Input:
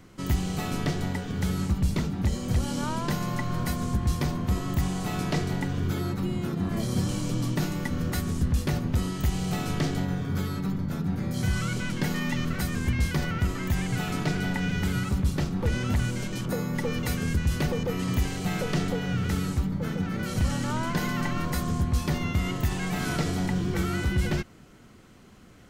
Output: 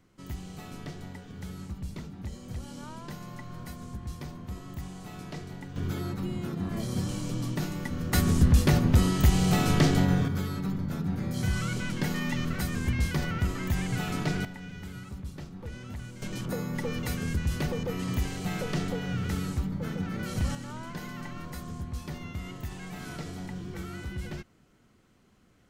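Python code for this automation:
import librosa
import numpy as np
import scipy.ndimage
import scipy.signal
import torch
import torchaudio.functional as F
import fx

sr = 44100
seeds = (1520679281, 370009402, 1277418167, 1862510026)

y = fx.gain(x, sr, db=fx.steps((0.0, -12.5), (5.76, -4.0), (8.13, 5.0), (10.28, -2.0), (14.45, -14.0), (16.22, -3.5), (20.55, -11.0)))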